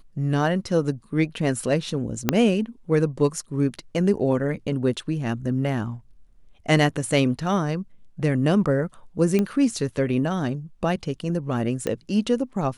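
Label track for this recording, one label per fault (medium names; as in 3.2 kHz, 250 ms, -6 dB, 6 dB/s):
2.290000	2.290000	pop -3 dBFS
9.390000	9.390000	pop -11 dBFS
11.870000	11.870000	pop -12 dBFS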